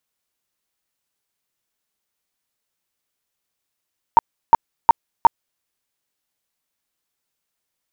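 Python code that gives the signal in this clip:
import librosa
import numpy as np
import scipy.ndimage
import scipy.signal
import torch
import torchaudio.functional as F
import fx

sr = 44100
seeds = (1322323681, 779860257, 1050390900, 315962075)

y = fx.tone_burst(sr, hz=923.0, cycles=17, every_s=0.36, bursts=4, level_db=-4.5)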